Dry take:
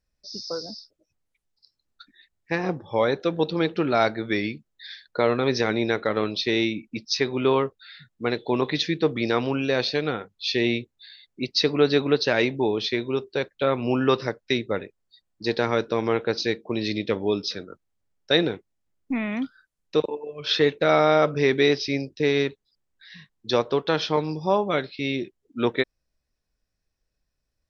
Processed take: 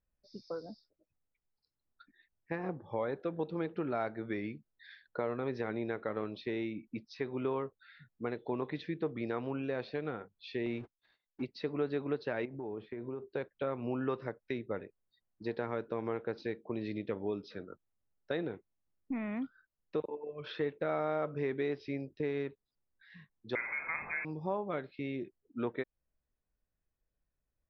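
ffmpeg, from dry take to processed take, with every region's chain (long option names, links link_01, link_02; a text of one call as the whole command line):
ffmpeg -i in.wav -filter_complex "[0:a]asettb=1/sr,asplit=3[link_01][link_02][link_03];[link_01]atrim=end=10.664[link_04];[link_02]atrim=start=10.66:end=11.45,asetpts=PTS-STARTPTS,afade=type=in:duration=0.004:curve=qsin,afade=type=out:start_time=0.786:duration=0.004:curve=qsin,aeval=exprs='val(0)+0.5*0.0158*sgn(val(0))':channel_layout=same,agate=range=-43dB:threshold=-37dB:ratio=16:release=100:detection=peak[link_05];[link_03]atrim=start=11.446[link_06];[link_04][link_05]acrossfade=duration=0.004:curve1=hsin:curve2=qsin[link_07];[link_07][link_06]acrossfade=duration=0.004:curve1=qsin:curve2=hsin,asettb=1/sr,asplit=3[link_08][link_09][link_10];[link_08]atrim=end=12.454[link_11];[link_09]atrim=start=12.45:end=13.32,asetpts=PTS-STARTPTS,afade=type=in:duration=0.004:curve=qsin,afade=type=out:start_time=0.866:duration=0.004:curve=qsin,acompressor=threshold=-28dB:ratio=10:attack=3.2:release=140:knee=1:detection=peak,lowpass=1600[link_12];[link_10]atrim=start=13.316[link_13];[link_11][link_12]acrossfade=duration=0.004:curve1=hsin:curve2=qsin[link_14];[link_14][link_13]acrossfade=duration=0.004:curve1=qsin:curve2=hsin,asettb=1/sr,asplit=3[link_15][link_16][link_17];[link_15]atrim=end=23.554[link_18];[link_16]atrim=start=23.55:end=24.25,asetpts=PTS-STARTPTS,afade=type=in:duration=0.004:curve=qsin,afade=type=out:start_time=0.696:duration=0.004:curve=qsin,aeval=exprs='val(0)+0.5*0.0794*sgn(val(0))':channel_layout=same,asplit=2[link_19][link_20];[link_20]adelay=50,volume=-6.5dB[link_21];[link_19][link_21]amix=inputs=2:normalize=0,atrim=end_sample=30870,lowpass=frequency=2200:width_type=q:width=0.5098,lowpass=frequency=2200:width_type=q:width=0.6013,lowpass=frequency=2200:width_type=q:width=0.9,lowpass=frequency=2200:width_type=q:width=2.563,afreqshift=-2600[link_22];[link_17]atrim=start=24.246[link_23];[link_18][link_22]acrossfade=duration=0.004:curve1=hsin:curve2=qsin[link_24];[link_24][link_23]acrossfade=duration=0.004:curve1=qsin:curve2=hsin,acompressor=threshold=-29dB:ratio=2,lowpass=1800,volume=-6.5dB" out.wav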